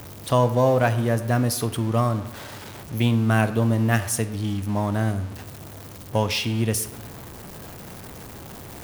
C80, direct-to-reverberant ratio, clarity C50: 15.0 dB, 11.5 dB, 13.0 dB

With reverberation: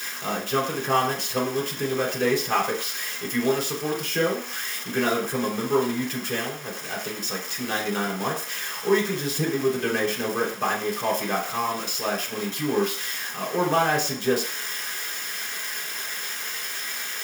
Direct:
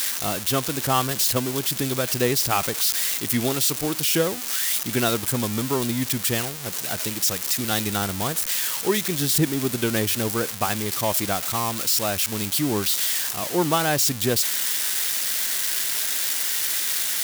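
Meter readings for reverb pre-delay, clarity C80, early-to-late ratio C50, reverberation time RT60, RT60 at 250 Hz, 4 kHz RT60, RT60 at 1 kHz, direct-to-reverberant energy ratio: 3 ms, 12.0 dB, 8.5 dB, 0.45 s, 0.35 s, 0.70 s, 0.50 s, -4.0 dB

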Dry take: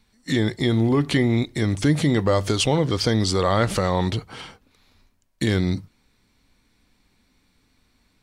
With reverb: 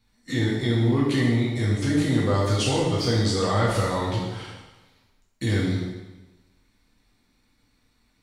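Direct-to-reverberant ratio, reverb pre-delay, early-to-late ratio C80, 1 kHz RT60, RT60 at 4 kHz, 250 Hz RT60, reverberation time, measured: -5.5 dB, 4 ms, 3.5 dB, 1.1 s, 1.0 s, 1.1 s, 1.1 s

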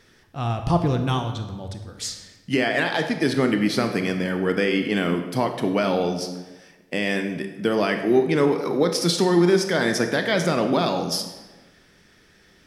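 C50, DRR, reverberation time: 8.0 dB, 6.0 dB, 1.2 s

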